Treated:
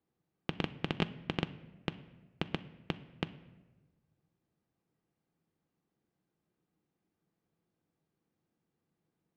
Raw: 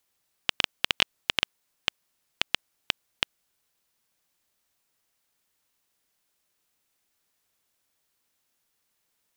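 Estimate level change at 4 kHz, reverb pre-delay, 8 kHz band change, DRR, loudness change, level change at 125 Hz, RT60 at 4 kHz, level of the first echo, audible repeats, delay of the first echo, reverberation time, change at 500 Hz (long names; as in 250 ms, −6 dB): −16.5 dB, 3 ms, below −20 dB, 8.0 dB, −10.0 dB, +10.0 dB, 0.75 s, no echo audible, no echo audible, no echo audible, 1.2 s, +1.5 dB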